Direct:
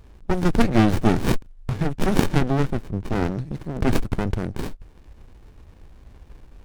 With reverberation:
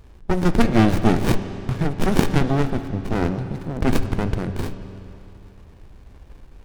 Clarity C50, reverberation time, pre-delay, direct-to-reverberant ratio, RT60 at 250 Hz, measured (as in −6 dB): 10.0 dB, 2.9 s, 10 ms, 9.0 dB, 2.9 s